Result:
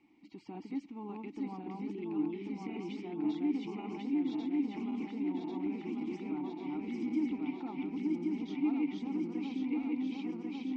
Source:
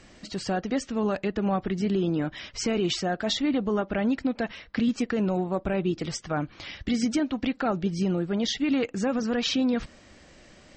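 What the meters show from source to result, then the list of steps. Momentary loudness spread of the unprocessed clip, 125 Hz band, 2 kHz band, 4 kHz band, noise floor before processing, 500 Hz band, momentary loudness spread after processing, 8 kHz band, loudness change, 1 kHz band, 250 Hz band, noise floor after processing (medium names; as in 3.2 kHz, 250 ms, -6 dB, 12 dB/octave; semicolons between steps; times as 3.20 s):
6 LU, -16.0 dB, -16.0 dB, -22.0 dB, -53 dBFS, -15.0 dB, 8 LU, under -25 dB, -9.0 dB, -13.0 dB, -7.0 dB, -53 dBFS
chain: backward echo that repeats 546 ms, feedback 77%, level -0.5 dB; peak limiter -14.5 dBFS, peak gain reduction 5 dB; vowel filter u; trim -3 dB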